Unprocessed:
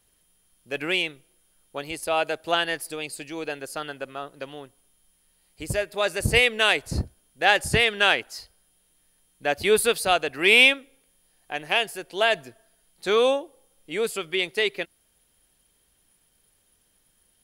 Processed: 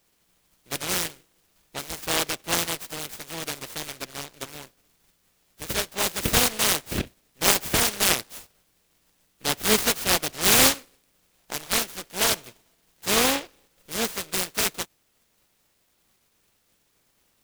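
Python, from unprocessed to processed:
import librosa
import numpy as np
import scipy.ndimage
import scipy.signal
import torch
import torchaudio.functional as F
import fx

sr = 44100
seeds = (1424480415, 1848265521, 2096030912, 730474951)

y = fx.spec_clip(x, sr, under_db=17)
y = fx.noise_mod_delay(y, sr, seeds[0], noise_hz=2300.0, depth_ms=0.21)
y = y * librosa.db_to_amplitude(-1.0)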